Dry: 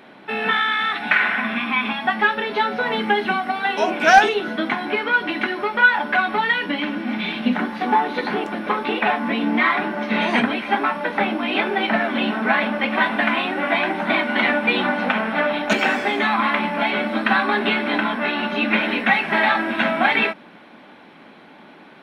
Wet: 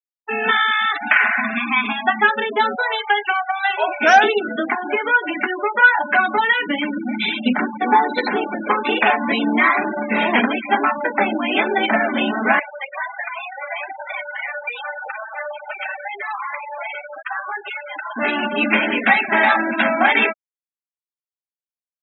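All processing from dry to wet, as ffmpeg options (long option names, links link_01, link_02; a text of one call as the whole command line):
ffmpeg -i in.wav -filter_complex "[0:a]asettb=1/sr,asplit=3[link_01][link_02][link_03];[link_01]atrim=end=2.754[link_04];[link_02]atrim=start=2.75:end=4.01,asetpts=PTS-STARTPTS,afade=type=in:duration=0.004:curve=qsin,afade=type=out:start_time=1.256:duration=0.004:curve=qsin,highpass=630,highshelf=frequency=4100:gain=2.5,acrusher=bits=9:mode=log:mix=0:aa=0.000001[link_05];[link_03]atrim=start=4.006[link_06];[link_04][link_05]acrossfade=duration=0.004:curve1=hsin:curve2=qsin[link_07];[link_07][link_06]acrossfade=duration=0.004:curve1=qsin:curve2=hsin,asettb=1/sr,asplit=3[link_08][link_09][link_10];[link_08]atrim=end=4.594[link_11];[link_09]atrim=start=4.59:end=6.11,asetpts=PTS-STARTPTS,afade=type=in:duration=0.004:curve=qsin,afade=type=out:start_time=1.516:duration=0.004:curve=qsin,highpass=290,aemphasis=mode=reproduction:type=50fm[link_12];[link_10]atrim=start=6.106[link_13];[link_11][link_12]acrossfade=duration=0.004:curve1=hsin:curve2=qsin[link_14];[link_14][link_13]acrossfade=duration=0.004:curve1=qsin:curve2=hsin,asettb=1/sr,asplit=3[link_15][link_16][link_17];[link_15]atrim=end=7.204[link_18];[link_16]atrim=start=7.2:end=9.46,asetpts=PTS-STARTPTS,afade=type=in:duration=0.004:curve=qsin,afade=type=out:start_time=2.256:duration=0.004:curve=qsin,highshelf=frequency=3700:gain=9.5,aecho=1:1:96|192:0.0631|0.0208,atrim=end_sample=99666[link_19];[link_17]atrim=start=9.456[link_20];[link_18][link_19]acrossfade=duration=0.004:curve1=hsin:curve2=qsin[link_21];[link_21][link_20]acrossfade=duration=0.004:curve1=qsin:curve2=hsin,asettb=1/sr,asplit=3[link_22][link_23][link_24];[link_22]atrim=end=12.594[link_25];[link_23]atrim=start=12.59:end=18.16,asetpts=PTS-STARTPTS,afade=type=in:duration=0.004:curve=qsin,afade=type=out:start_time=5.566:duration=0.004:curve=qsin,acompressor=threshold=-20dB:ratio=2.5:attack=3.2:release=140:knee=1:detection=peak,flanger=delay=2.2:depth=1.8:regen=-60:speed=1.6:shape=triangular,highpass=610,lowpass=7500[link_26];[link_24]atrim=start=18.156[link_27];[link_25][link_26]acrossfade=duration=0.004:curve1=hsin:curve2=qsin[link_28];[link_28][link_27]acrossfade=duration=0.004:curve1=qsin:curve2=hsin,highpass=frequency=220:width=0.5412,highpass=frequency=220:width=1.3066,afftfilt=real='re*gte(hypot(re,im),0.0891)':imag='im*gte(hypot(re,im),0.0891)':win_size=1024:overlap=0.75,alimiter=level_in=4dB:limit=-1dB:release=50:level=0:latency=1,volume=-1dB" out.wav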